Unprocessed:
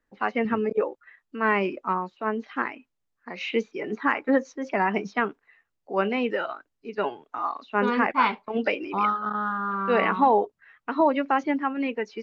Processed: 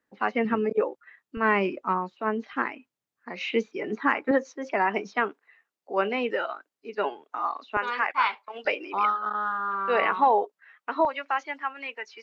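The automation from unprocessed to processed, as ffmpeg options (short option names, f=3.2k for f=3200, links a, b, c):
-af "asetnsamples=n=441:p=0,asendcmd='1.37 highpass f 58;2.53 highpass f 120;4.31 highpass f 300;7.77 highpass f 930;8.65 highpass f 440;11.05 highpass f 1000',highpass=130"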